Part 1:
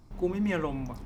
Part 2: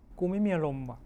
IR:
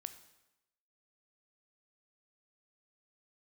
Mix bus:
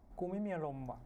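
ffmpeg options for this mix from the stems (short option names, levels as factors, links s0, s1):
-filter_complex "[0:a]bandpass=f=1500:t=q:w=1.3:csg=0,volume=0.119[s0];[1:a]equalizer=f=710:w=2.8:g=9,bandreject=f=60:t=h:w=6,bandreject=f=120:t=h:w=6,bandreject=f=180:t=h:w=6,bandreject=f=240:t=h:w=6,bandreject=f=300:t=h:w=6,bandreject=f=360:t=h:w=6,acompressor=threshold=0.0282:ratio=6,volume=-1,volume=0.562[s1];[s0][s1]amix=inputs=2:normalize=0,equalizer=f=2700:t=o:w=0.37:g=-5.5"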